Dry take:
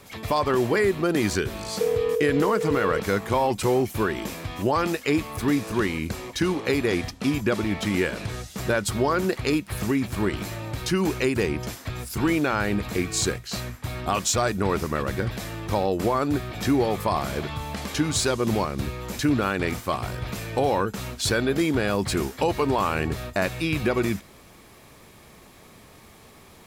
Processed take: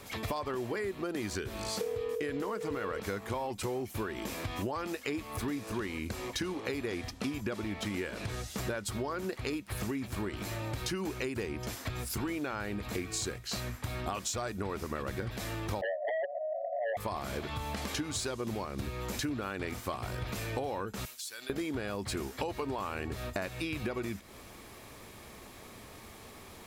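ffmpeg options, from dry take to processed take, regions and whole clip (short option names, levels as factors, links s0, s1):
-filter_complex "[0:a]asettb=1/sr,asplit=3[s0][s1][s2];[s0]atrim=end=15.814[s3];[s1]atrim=start=15.81:end=16.97,asetpts=PTS-STARTPTS,afade=t=in:d=0.004:c=qsin,afade=t=out:st=1.156:d=0.004:c=qsin,asuperpass=centerf=630:order=20:qfactor=3.6,aeval=exprs='0.119*sin(PI/2*3.55*val(0)/0.119)':c=same[s4];[s2]atrim=start=16.966[s5];[s3][s4]acrossfade=d=0.004:c1=hsin:c2=qsin[s6];[s6][s5]acrossfade=d=0.004:c1=qsin:c2=hsin,asettb=1/sr,asplit=3[s7][s8][s9];[s7]atrim=end=21.054[s10];[s8]atrim=start=21.05:end=21.5,asetpts=PTS-STARTPTS,afade=t=in:d=0.004:c=qsin,afade=t=out:st=0.446:d=0.004:c=qsin,aderivative,acompressor=threshold=0.0112:ratio=5:attack=3.2:release=140:knee=1:detection=peak[s11];[s9]atrim=start=21.496[s12];[s10][s11]acrossfade=d=0.004:c1=hsin:c2=qsin[s13];[s13][s12]acrossfade=d=0.004:c1=qsin:c2=hsin,equalizer=f=160:w=5:g=-8,acompressor=threshold=0.0224:ratio=6"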